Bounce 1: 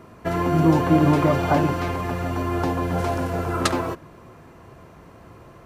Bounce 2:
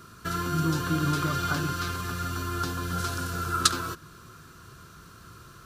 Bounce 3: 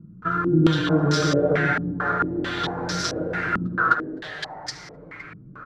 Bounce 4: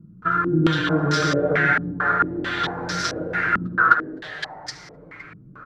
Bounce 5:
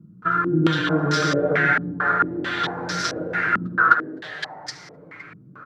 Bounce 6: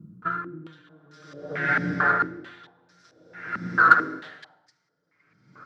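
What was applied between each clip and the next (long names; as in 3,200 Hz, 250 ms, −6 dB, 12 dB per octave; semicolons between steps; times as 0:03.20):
in parallel at 0 dB: downward compressor, threshold −30 dBFS, peak gain reduction 17.5 dB; on the sum: drawn EQ curve 160 Hz 0 dB, 280 Hz −6 dB, 390 Hz −4 dB, 580 Hz −13 dB, 860 Hz −12 dB, 1,400 Hz +11 dB, 2,000 Hz −5 dB, 3,900 Hz +12 dB; level −8.5 dB
comb filter 6.3 ms, depth 85%; echo with shifted repeats 257 ms, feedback 59%, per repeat +140 Hz, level −6 dB; low-pass on a step sequencer 4.5 Hz 210–5,300 Hz
dynamic equaliser 1,800 Hz, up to +7 dB, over −36 dBFS, Q 0.93; level −1.5 dB
high-pass filter 110 Hz 12 dB per octave
in parallel at −10 dB: soft clipping −12 dBFS, distortion −15 dB; on the sum: convolution reverb RT60 3.4 s, pre-delay 34 ms, DRR 16 dB; tremolo with a sine in dB 0.51 Hz, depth 35 dB; level −1 dB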